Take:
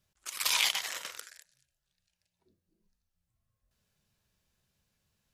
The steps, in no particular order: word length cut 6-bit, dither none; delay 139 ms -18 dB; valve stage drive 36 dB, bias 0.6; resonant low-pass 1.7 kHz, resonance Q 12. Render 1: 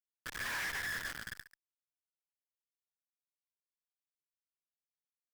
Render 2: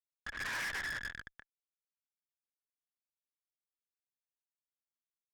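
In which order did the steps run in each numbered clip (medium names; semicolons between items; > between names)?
resonant low-pass > word length cut > delay > valve stage; delay > word length cut > resonant low-pass > valve stage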